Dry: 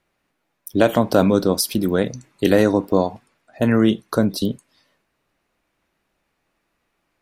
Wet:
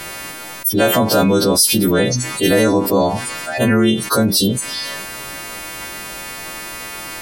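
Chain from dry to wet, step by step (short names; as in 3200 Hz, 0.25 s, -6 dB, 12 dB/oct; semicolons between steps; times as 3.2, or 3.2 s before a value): frequency quantiser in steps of 2 st; fast leveller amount 70%; gain -1.5 dB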